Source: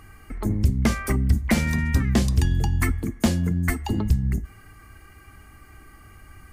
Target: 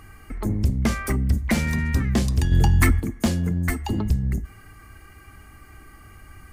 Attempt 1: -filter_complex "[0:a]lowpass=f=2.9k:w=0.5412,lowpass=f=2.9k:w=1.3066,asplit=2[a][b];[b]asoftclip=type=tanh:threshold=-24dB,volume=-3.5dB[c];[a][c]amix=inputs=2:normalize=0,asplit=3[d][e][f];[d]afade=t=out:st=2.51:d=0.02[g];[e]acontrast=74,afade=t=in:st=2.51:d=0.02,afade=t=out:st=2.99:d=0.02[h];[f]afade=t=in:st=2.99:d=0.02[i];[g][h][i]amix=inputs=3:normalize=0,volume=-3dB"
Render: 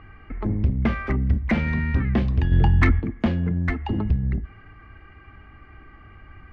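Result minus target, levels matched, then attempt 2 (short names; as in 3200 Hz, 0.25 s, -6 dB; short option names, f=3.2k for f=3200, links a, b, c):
4000 Hz band -6.5 dB
-filter_complex "[0:a]asplit=2[a][b];[b]asoftclip=type=tanh:threshold=-24dB,volume=-3.5dB[c];[a][c]amix=inputs=2:normalize=0,asplit=3[d][e][f];[d]afade=t=out:st=2.51:d=0.02[g];[e]acontrast=74,afade=t=in:st=2.51:d=0.02,afade=t=out:st=2.99:d=0.02[h];[f]afade=t=in:st=2.99:d=0.02[i];[g][h][i]amix=inputs=3:normalize=0,volume=-3dB"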